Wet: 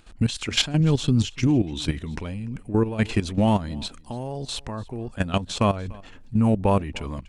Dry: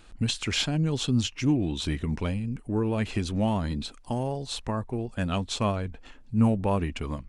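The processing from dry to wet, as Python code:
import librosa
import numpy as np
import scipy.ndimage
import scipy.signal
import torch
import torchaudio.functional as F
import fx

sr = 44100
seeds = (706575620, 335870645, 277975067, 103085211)

y = fx.low_shelf(x, sr, hz=98.0, db=8.0, at=(0.8, 1.47))
y = fx.level_steps(y, sr, step_db=13)
y = y + 10.0 ** (-23.5 / 20.0) * np.pad(y, (int(292 * sr / 1000.0), 0))[:len(y)]
y = y * 10.0 ** (8.0 / 20.0)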